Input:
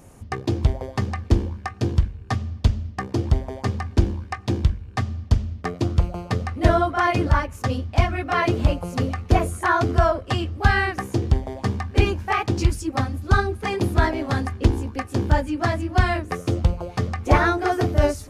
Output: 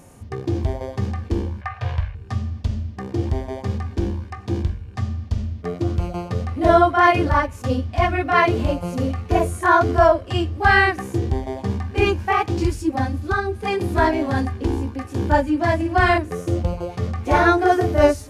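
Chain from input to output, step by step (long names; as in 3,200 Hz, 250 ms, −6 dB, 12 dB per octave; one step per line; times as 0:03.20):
low-shelf EQ 120 Hz −6 dB
notch filter 1,300 Hz, Q 15
harmonic and percussive parts rebalanced percussive −16 dB
0:01.61–0:02.15: drawn EQ curve 120 Hz 0 dB, 310 Hz −28 dB, 560 Hz +5 dB, 2,200 Hz +10 dB, 7,700 Hz −9 dB
0:13.21–0:13.94: downward compressor 6 to 1, threshold −25 dBFS, peak gain reduction 8.5 dB
0:15.75–0:16.18: flutter between parallel walls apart 9.2 metres, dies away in 0.44 s
level +7 dB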